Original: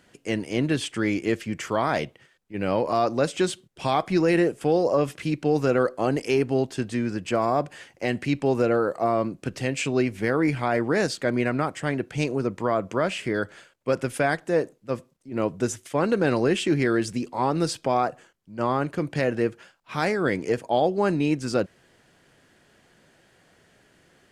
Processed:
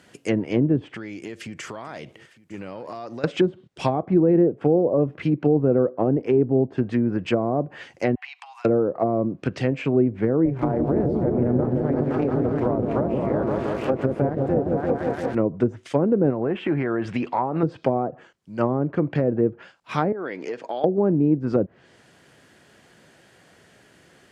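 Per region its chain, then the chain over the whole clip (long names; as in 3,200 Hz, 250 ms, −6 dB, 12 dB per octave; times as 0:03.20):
0:00.94–0:03.24: downward compressor 8 to 1, threshold −36 dBFS + single-tap delay 906 ms −20.5 dB
0:08.15–0:08.65: high-shelf EQ 7,400 Hz −10 dB + downward compressor 12 to 1, threshold −27 dBFS + Chebyshev high-pass with heavy ripple 730 Hz, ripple 6 dB
0:10.45–0:15.35: spike at every zero crossing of −21 dBFS + amplitude modulation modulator 270 Hz, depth 65% + echo whose low-pass opens from repeat to repeat 172 ms, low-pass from 400 Hz, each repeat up 1 octave, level 0 dB
0:16.30–0:17.63: flat-topped bell 1,500 Hz +8.5 dB 2.7 octaves + downward compressor 2.5 to 1, threshold −25 dBFS
0:20.12–0:20.84: downward compressor 4 to 1, threshold −31 dBFS + band-pass filter 290–4,800 Hz
whole clip: treble cut that deepens with the level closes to 480 Hz, closed at −20.5 dBFS; high-pass filter 66 Hz; level +5 dB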